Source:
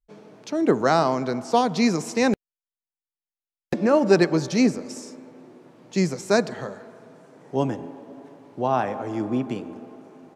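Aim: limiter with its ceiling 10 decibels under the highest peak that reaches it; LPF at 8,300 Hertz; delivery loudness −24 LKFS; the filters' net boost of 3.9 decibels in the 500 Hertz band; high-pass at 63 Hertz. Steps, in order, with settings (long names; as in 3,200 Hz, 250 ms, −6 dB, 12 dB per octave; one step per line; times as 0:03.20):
high-pass filter 63 Hz
low-pass filter 8,300 Hz
parametric band 500 Hz +5 dB
level +0.5 dB
brickwall limiter −12 dBFS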